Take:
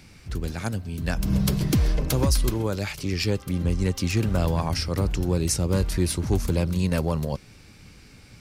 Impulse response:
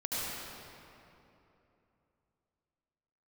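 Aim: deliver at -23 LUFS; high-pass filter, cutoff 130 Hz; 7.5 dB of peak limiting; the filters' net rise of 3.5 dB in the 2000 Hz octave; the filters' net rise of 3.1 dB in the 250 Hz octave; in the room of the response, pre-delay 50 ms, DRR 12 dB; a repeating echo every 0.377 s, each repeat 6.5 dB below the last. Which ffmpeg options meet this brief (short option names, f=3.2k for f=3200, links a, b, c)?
-filter_complex "[0:a]highpass=130,equalizer=f=250:t=o:g=5.5,equalizer=f=2k:t=o:g=4.5,alimiter=limit=-16.5dB:level=0:latency=1,aecho=1:1:377|754|1131|1508|1885|2262:0.473|0.222|0.105|0.0491|0.0231|0.0109,asplit=2[a][b];[1:a]atrim=start_sample=2205,adelay=50[c];[b][c]afir=irnorm=-1:irlink=0,volume=-18dB[d];[a][d]amix=inputs=2:normalize=0,volume=3dB"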